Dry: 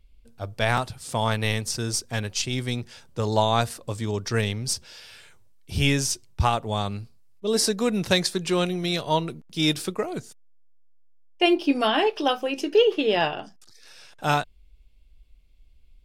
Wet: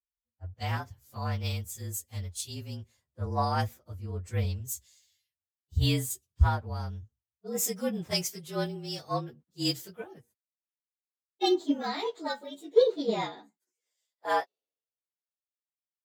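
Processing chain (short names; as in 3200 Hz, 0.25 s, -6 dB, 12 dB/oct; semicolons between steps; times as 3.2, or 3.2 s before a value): inharmonic rescaling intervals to 111%; high-pass sweep 70 Hz -> 490 Hz, 12.32–14.07; three-band expander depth 100%; gain -8.5 dB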